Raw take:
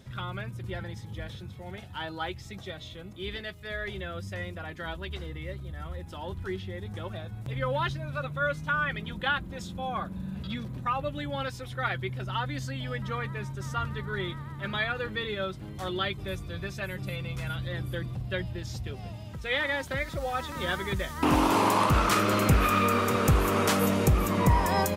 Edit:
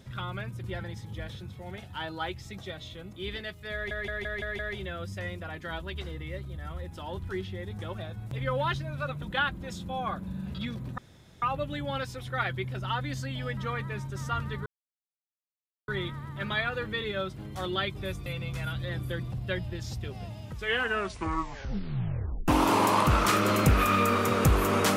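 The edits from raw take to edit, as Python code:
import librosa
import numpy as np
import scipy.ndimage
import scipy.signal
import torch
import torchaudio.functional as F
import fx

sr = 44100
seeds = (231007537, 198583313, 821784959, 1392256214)

y = fx.edit(x, sr, fx.stutter(start_s=3.74, slice_s=0.17, count=6),
    fx.cut(start_s=8.37, length_s=0.74),
    fx.insert_room_tone(at_s=10.87, length_s=0.44),
    fx.insert_silence(at_s=14.11, length_s=1.22),
    fx.cut(start_s=16.49, length_s=0.6),
    fx.tape_stop(start_s=19.31, length_s=2.0), tone=tone)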